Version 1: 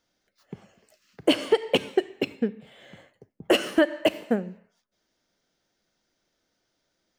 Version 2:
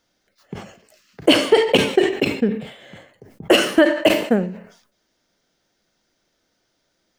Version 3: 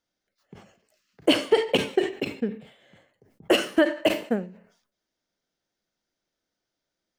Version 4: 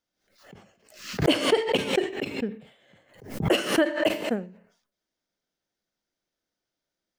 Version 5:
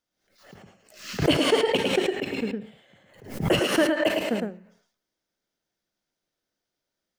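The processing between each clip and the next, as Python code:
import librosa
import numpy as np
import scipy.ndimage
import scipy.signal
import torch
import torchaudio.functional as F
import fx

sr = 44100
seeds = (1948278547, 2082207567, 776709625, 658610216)

y1 = fx.sustainer(x, sr, db_per_s=96.0)
y1 = y1 * librosa.db_to_amplitude(6.0)
y2 = fx.upward_expand(y1, sr, threshold_db=-27.0, expansion=1.5)
y2 = y2 * librosa.db_to_amplitude(-5.0)
y3 = fx.pre_swell(y2, sr, db_per_s=100.0)
y3 = y3 * librosa.db_to_amplitude(-2.5)
y4 = y3 + 10.0 ** (-4.0 / 20.0) * np.pad(y3, (int(108 * sr / 1000.0), 0))[:len(y3)]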